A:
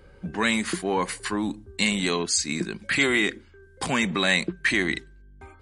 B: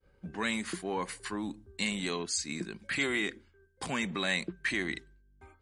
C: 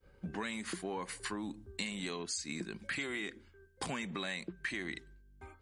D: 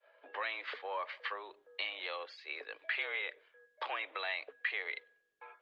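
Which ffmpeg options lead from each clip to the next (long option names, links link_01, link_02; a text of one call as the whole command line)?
ffmpeg -i in.wav -af "agate=range=-33dB:threshold=-45dB:ratio=3:detection=peak,volume=-9dB" out.wav
ffmpeg -i in.wav -af "acompressor=threshold=-39dB:ratio=6,volume=3dB" out.wav
ffmpeg -i in.wav -af "highpass=frequency=470:width_type=q:width=0.5412,highpass=frequency=470:width_type=q:width=1.307,lowpass=frequency=3600:width_type=q:width=0.5176,lowpass=frequency=3600:width_type=q:width=0.7071,lowpass=frequency=3600:width_type=q:width=1.932,afreqshift=92,volume=3.5dB" -ar 48000 -c:a libopus -b:a 48k out.opus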